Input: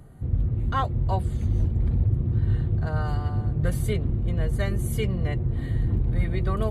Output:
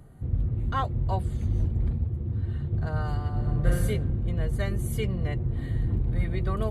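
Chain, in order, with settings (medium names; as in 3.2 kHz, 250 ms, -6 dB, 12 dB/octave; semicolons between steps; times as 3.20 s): 1.93–2.73 s: three-phase chorus; 3.31–3.84 s: reverb throw, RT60 0.92 s, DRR -2 dB; trim -2.5 dB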